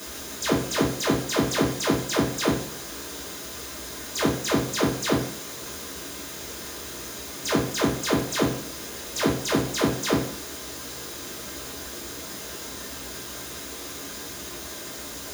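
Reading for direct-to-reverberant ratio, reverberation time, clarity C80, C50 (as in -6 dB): -4.0 dB, 0.55 s, 10.5 dB, 6.0 dB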